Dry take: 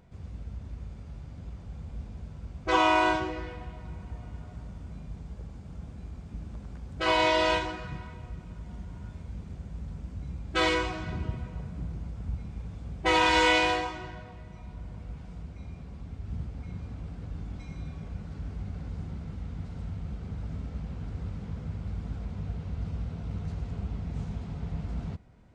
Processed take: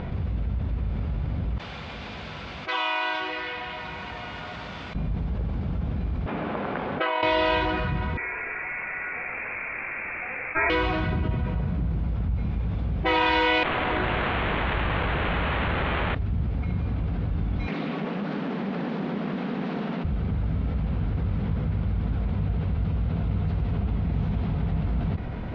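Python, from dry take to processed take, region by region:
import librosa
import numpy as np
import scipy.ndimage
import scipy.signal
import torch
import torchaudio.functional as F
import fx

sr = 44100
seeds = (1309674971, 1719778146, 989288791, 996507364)

y = fx.chain(x, sr, fx.lowpass(hz=3700.0, slope=6),
    fx.differentiator(), at=(1.58, 4.95))
y = fx.chain(y, sr, fx.bandpass_edges(low_hz=460.0, high_hz=2500.0),
    fx.over_compress(threshold_db=-35.0, ratio=-1.0), at=(6.26, 7.23))
y = fx.chain(y, sr, fx.highpass(hz=530.0, slope=24),
    fx.freq_invert(carrier_hz=2900), at=(8.17, 10.7))
y = fx.chain(y, sr, fx.over_compress(threshold_db=-39.0, ratio=-1.0),
    fx.quant_dither(seeds[0], bits=6, dither='triangular'),
    fx.resample_linear(factor=8), at=(13.63, 16.15))
y = fx.chain(y, sr, fx.steep_highpass(hz=190.0, slope=48),
    fx.doppler_dist(depth_ms=0.46), at=(17.67, 20.04))
y = scipy.signal.sosfilt(scipy.signal.butter(4, 3700.0, 'lowpass', fs=sr, output='sos'), y)
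y = fx.env_flatten(y, sr, amount_pct=70)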